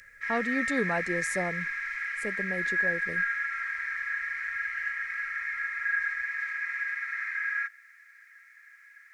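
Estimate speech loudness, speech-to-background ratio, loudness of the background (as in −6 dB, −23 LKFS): −34.0 LKFS, −3.5 dB, −30.5 LKFS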